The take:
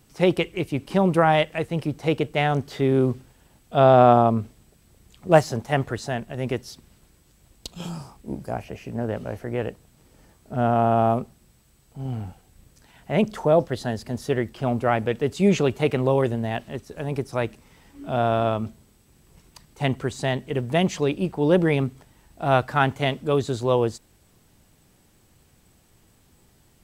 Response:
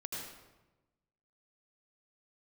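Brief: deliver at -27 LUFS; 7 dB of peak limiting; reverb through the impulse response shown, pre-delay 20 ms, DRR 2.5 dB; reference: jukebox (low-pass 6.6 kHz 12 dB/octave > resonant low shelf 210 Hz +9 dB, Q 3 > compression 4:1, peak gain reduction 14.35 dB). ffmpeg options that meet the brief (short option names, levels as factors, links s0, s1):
-filter_complex "[0:a]alimiter=limit=0.335:level=0:latency=1,asplit=2[s0][s1];[1:a]atrim=start_sample=2205,adelay=20[s2];[s1][s2]afir=irnorm=-1:irlink=0,volume=0.708[s3];[s0][s3]amix=inputs=2:normalize=0,lowpass=6600,lowshelf=f=210:t=q:w=3:g=9,acompressor=threshold=0.112:ratio=4,volume=0.631"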